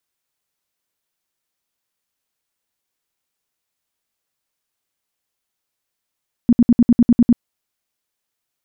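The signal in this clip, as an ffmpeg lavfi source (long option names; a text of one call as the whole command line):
ffmpeg -f lavfi -i "aevalsrc='0.447*sin(2*PI*238*mod(t,0.1))*lt(mod(t,0.1),9/238)':duration=0.9:sample_rate=44100" out.wav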